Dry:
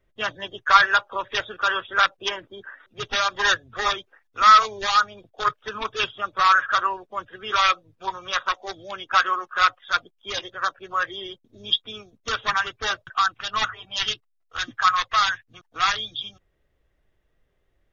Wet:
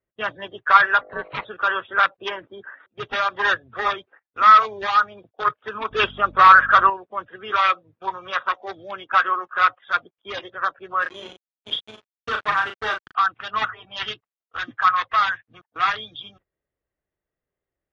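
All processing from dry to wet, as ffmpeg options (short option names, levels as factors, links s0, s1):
-filter_complex "[0:a]asettb=1/sr,asplit=3[s0][s1][s2];[s0]atrim=end=1.014[s3];[s1]atrim=start=1.01:end=1.45,asetpts=PTS-STARTPTS,afade=t=in:d=0.004:c=qsin,afade=t=out:st=0.436:d=0.004:c=qsin,lowpass=3800,aeval=exprs='val(0)+0.00708*(sin(2*PI*50*n/s)+sin(2*PI*2*50*n/s)/2+sin(2*PI*3*50*n/s)/3+sin(2*PI*4*50*n/s)/4+sin(2*PI*5*50*n/s)/5)':c=same,aeval=exprs='val(0)*sin(2*PI*560*n/s)':c=same[s4];[s2]atrim=start=1.446[s5];[s3][s4]acrossfade=d=0.004:c1=hsin:c2=qsin[s6];[s6][s5]acrossfade=d=0.004:c1=qsin:c2=hsin,asettb=1/sr,asplit=3[s7][s8][s9];[s7]atrim=end=5.914[s10];[s8]atrim=start=5.91:end=6.9,asetpts=PTS-STARTPTS,afade=t=in:d=0.004:c=qsin,afade=t=out:st=0.986:d=0.004:c=qsin,acontrast=71,aeval=exprs='val(0)+0.0126*(sin(2*PI*50*n/s)+sin(2*PI*2*50*n/s)/2+sin(2*PI*3*50*n/s)/3+sin(2*PI*4*50*n/s)/4+sin(2*PI*5*50*n/s)/5)':c=same[s11];[s9]atrim=start=6.896[s12];[s10][s11]acrossfade=d=0.004:c1=hsin:c2=qsin[s13];[s13][s12]acrossfade=d=0.004:c1=qsin:c2=hsin,asettb=1/sr,asplit=3[s14][s15][s16];[s14]atrim=end=11.024[s17];[s15]atrim=start=11.02:end=13.15,asetpts=PTS-STARTPTS,afade=t=in:d=0.004:c=qsin,afade=t=out:st=2.126:d=0.004:c=qsin,acrusher=bits=4:mix=0:aa=0.5,asplit=2[s18][s19];[s19]adelay=37,volume=0.531[s20];[s18][s20]amix=inputs=2:normalize=0,atrim=end_sample=93933[s21];[s16]atrim=start=13.146[s22];[s17][s21]acrossfade=d=0.004:c1=hsin:c2=qsin[s23];[s23][s22]acrossfade=d=0.004:c1=qsin:c2=hsin,highpass=f=130:p=1,agate=range=0.2:threshold=0.00282:ratio=16:detection=peak,lowpass=2300,volume=1.26"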